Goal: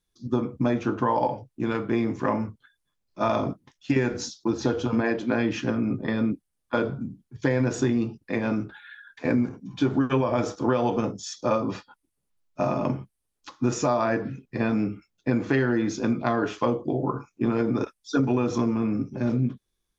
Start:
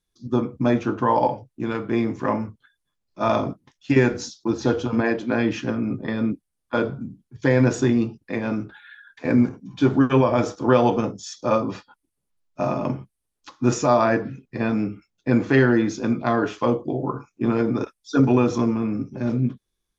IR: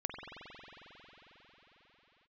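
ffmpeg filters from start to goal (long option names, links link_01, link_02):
-af "acompressor=threshold=-19dB:ratio=6"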